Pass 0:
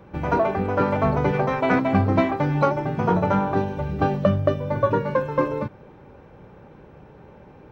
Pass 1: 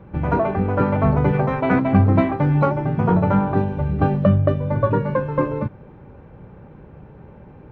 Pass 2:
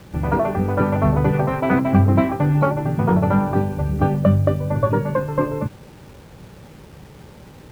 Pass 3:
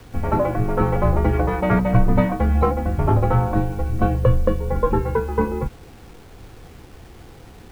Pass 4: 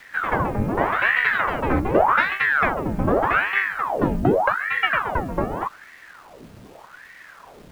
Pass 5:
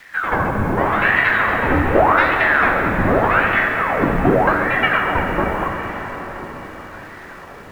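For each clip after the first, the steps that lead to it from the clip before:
bass and treble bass +7 dB, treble −14 dB
bit-depth reduction 8 bits, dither none
frequency shifter −75 Hz
ring modulator whose carrier an LFO sweeps 1,000 Hz, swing 90%, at 0.84 Hz
feedback delay with all-pass diffusion 1,030 ms, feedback 44%, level −15.5 dB; dense smooth reverb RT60 3.9 s, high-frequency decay 0.8×, DRR 1.5 dB; level +2 dB

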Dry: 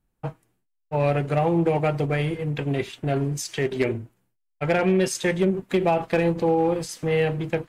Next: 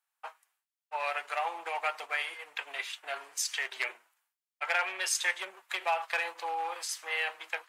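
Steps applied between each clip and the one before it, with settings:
high-pass filter 920 Hz 24 dB per octave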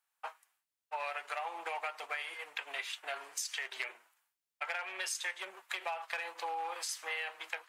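downward compressor 6 to 1, threshold −36 dBFS, peak gain reduction 12 dB
level +1 dB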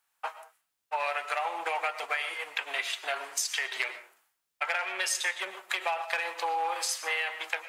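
convolution reverb, pre-delay 80 ms, DRR 12.5 dB
level +7.5 dB

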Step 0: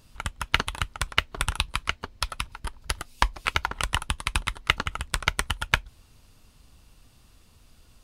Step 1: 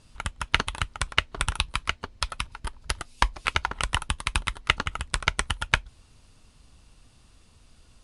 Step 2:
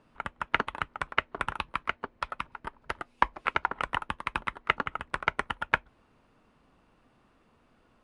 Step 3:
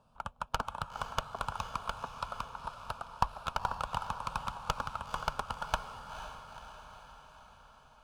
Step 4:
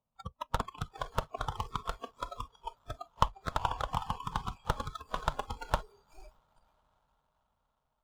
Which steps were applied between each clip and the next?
Butterworth low-pass 11,000 Hz 96 dB per octave
three-way crossover with the lows and the highs turned down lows −18 dB, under 180 Hz, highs −23 dB, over 2,200 Hz; level +1 dB
asymmetric clip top −24.5 dBFS; phaser with its sweep stopped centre 820 Hz, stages 4; feedback delay with all-pass diffusion 484 ms, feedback 60%, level −9 dB
running median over 25 samples; noise reduction from a noise print of the clip's start 24 dB; highs frequency-modulated by the lows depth 0.35 ms; level +5 dB

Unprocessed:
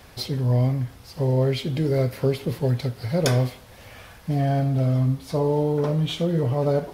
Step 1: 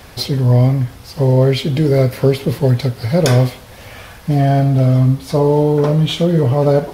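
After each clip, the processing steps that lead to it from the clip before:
boost into a limiter +10 dB
level −1 dB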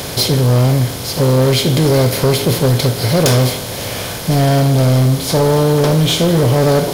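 compressor on every frequency bin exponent 0.6
high-shelf EQ 4,800 Hz +11 dB
gain into a clipping stage and back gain 8 dB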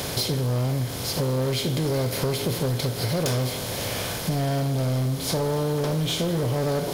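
downward compressor, threshold −17 dBFS, peak gain reduction 7.5 dB
level −5.5 dB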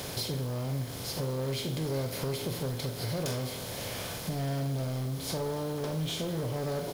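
background noise violet −53 dBFS
double-tracking delay 44 ms −11 dB
level −8.5 dB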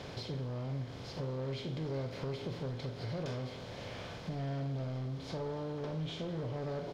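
high-frequency loss of the air 170 metres
level −5 dB

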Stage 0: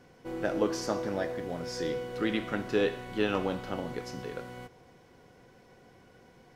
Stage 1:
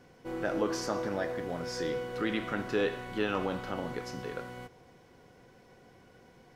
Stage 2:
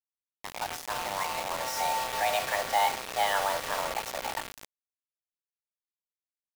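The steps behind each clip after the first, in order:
dynamic equaliser 1,300 Hz, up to +4 dB, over −48 dBFS, Q 1.1; in parallel at −1 dB: brickwall limiter −23.5 dBFS, peak gain reduction 10.5 dB; on the sum: level −6 dB
fade in at the beginning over 1.82 s; frequency shifter +400 Hz; bit-depth reduction 6 bits, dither none; level +3.5 dB

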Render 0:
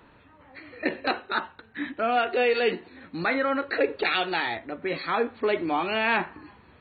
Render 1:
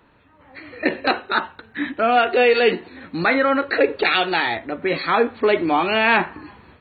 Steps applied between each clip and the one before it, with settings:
automatic gain control gain up to 10 dB
level −1.5 dB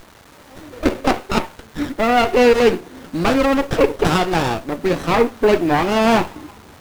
in parallel at −6.5 dB: bit-depth reduction 6 bits, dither triangular
on the sum: windowed peak hold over 17 samples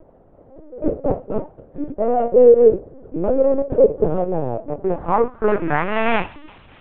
loose part that buzzes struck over −29 dBFS, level −23 dBFS
linear-prediction vocoder at 8 kHz pitch kept
low-pass filter sweep 530 Hz → 2,900 Hz, 0:04.47–0:06.36
level −4 dB

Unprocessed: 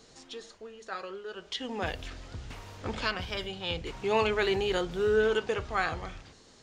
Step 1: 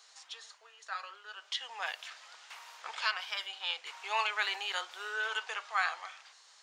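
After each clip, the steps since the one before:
high-pass filter 860 Hz 24 dB per octave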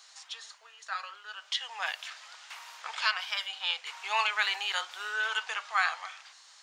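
parametric band 300 Hz −12 dB 1.4 octaves
level +4.5 dB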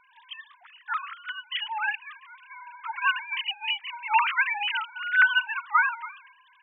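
three sine waves on the formant tracks
level +6 dB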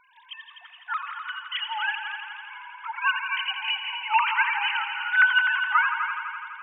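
echo machine with several playback heads 84 ms, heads all three, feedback 64%, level −12 dB

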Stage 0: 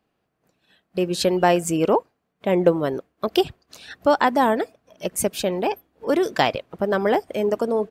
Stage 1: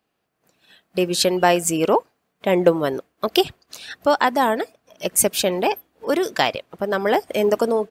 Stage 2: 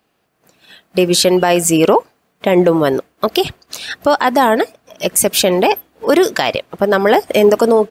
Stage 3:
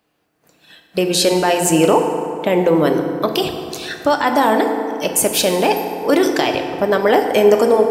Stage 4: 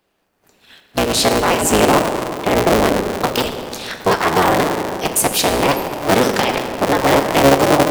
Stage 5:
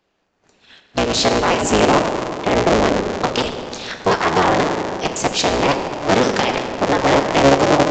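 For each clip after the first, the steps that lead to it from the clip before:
spectral tilt +1.5 dB per octave; automatic gain control gain up to 8.5 dB; level −1 dB
boost into a limiter +11 dB; level −1 dB
feedback delay network reverb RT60 2.7 s, high-frequency decay 0.5×, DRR 4 dB; level −3.5 dB
sub-harmonics by changed cycles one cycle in 3, inverted
downsampling to 16,000 Hz; level −1 dB

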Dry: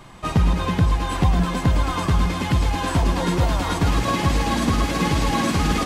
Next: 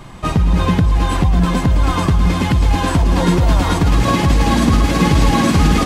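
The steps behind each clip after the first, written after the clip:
low-shelf EQ 300 Hz +5.5 dB
in parallel at +3 dB: compressor whose output falls as the input rises −15 dBFS, ratio −0.5
on the sum: level −4 dB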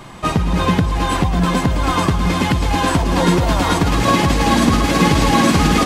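low-shelf EQ 130 Hz −10 dB
level +2.5 dB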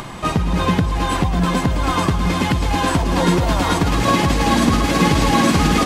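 upward compression, threshold −23 dBFS
level −1.5 dB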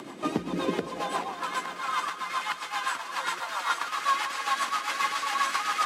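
high-pass filter sweep 290 Hz → 1,200 Hz, 0:00.60–0:01.48
feedback delay with all-pass diffusion 473 ms, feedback 49%, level −11.5 dB
rotating-speaker cabinet horn 7.5 Hz
level −8.5 dB

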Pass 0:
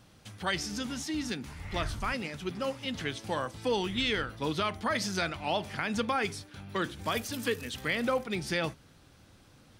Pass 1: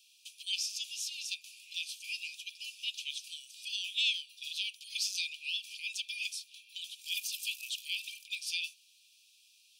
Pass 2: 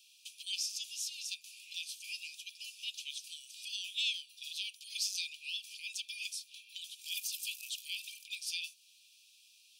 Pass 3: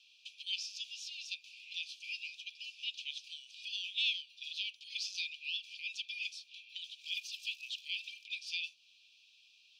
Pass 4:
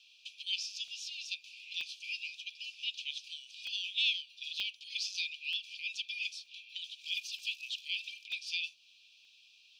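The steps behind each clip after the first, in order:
Chebyshev high-pass filter 2,400 Hz, order 10; level +3 dB
dynamic equaliser 2,400 Hz, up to −6 dB, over −49 dBFS, Q 0.73; level +1 dB
high-frequency loss of the air 230 metres; level +6 dB
regular buffer underruns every 0.93 s, samples 64, zero, from 0:00.88; level +2.5 dB

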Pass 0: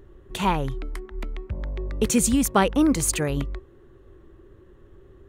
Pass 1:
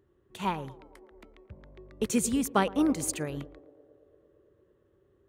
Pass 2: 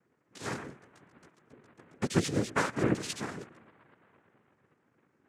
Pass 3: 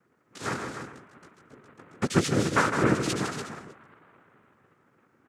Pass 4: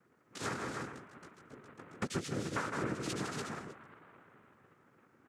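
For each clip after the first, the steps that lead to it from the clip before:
high-pass filter 87 Hz 12 dB per octave; feedback echo with a band-pass in the loop 113 ms, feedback 85%, band-pass 490 Hz, level −12.5 dB; expander for the loud parts 1.5 to 1, over −35 dBFS; level −5 dB
notch filter 940 Hz, Q 7.1; multi-voice chorus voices 2, 1.4 Hz, delay 15 ms, depth 3 ms; cochlear-implant simulation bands 3
parametric band 1,300 Hz +6 dB 0.39 octaves; on a send: loudspeakers that aren't time-aligned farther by 54 metres −8 dB, 99 metres −9 dB; on the sum: level +4 dB
downward compressor 5 to 1, threshold −33 dBFS, peak gain reduction 15.5 dB; level −1.5 dB

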